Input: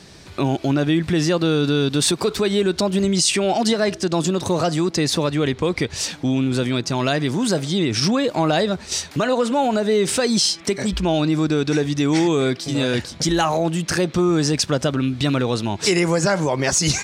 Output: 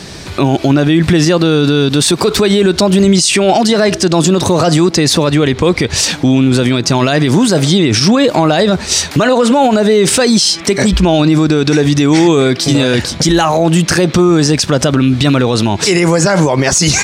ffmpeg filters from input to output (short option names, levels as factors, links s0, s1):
-af "alimiter=level_in=6.31:limit=0.891:release=50:level=0:latency=1,volume=0.891"